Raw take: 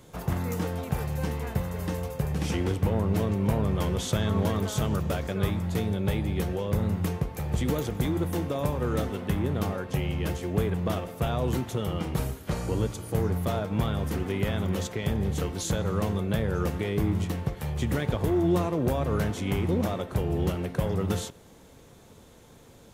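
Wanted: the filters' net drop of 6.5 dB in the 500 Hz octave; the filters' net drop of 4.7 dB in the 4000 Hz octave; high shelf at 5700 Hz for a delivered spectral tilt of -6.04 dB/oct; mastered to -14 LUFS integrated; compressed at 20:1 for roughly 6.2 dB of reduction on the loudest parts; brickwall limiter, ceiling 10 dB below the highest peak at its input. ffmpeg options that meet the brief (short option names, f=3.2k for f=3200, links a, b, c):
-af "equalizer=f=500:t=o:g=-8.5,equalizer=f=4k:t=o:g=-7.5,highshelf=f=5.7k:g=4,acompressor=threshold=-28dB:ratio=20,volume=23.5dB,alimiter=limit=-4.5dB:level=0:latency=1"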